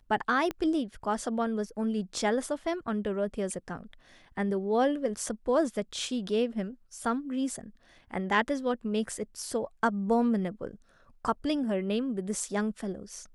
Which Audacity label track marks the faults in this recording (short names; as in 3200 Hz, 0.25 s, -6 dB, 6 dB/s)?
0.510000	0.510000	pop -19 dBFS